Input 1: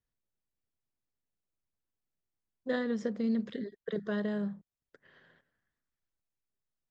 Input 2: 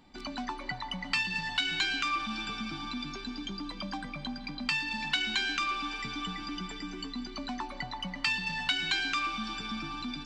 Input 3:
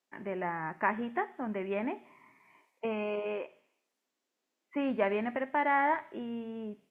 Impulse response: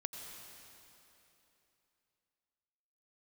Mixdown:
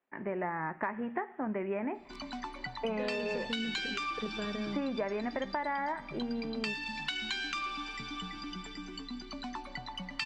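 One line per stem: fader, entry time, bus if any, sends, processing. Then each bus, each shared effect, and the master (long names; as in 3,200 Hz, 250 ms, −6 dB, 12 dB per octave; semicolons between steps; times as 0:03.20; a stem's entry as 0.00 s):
−4.5 dB, 0.30 s, no send, no processing
−4.0 dB, 1.95 s, no send, no processing
+3.0 dB, 0.00 s, no send, low-pass filter 2,400 Hz 24 dB per octave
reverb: not used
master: downward compressor 12 to 1, threshold −30 dBFS, peak gain reduction 10.5 dB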